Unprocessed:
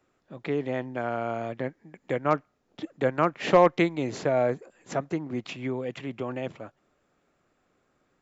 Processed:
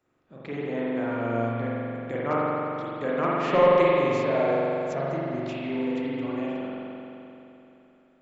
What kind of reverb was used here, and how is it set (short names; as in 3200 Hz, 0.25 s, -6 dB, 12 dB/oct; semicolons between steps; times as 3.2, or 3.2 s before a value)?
spring tank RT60 3.1 s, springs 43 ms, chirp 45 ms, DRR -7.5 dB; gain -6.5 dB